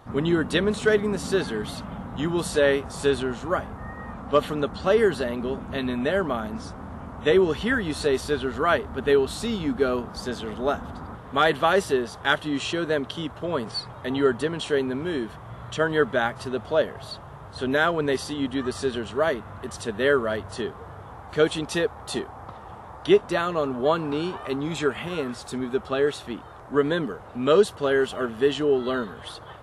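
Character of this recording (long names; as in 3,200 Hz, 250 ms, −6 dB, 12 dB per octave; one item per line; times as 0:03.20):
background noise floor −42 dBFS
spectral slope −4.0 dB per octave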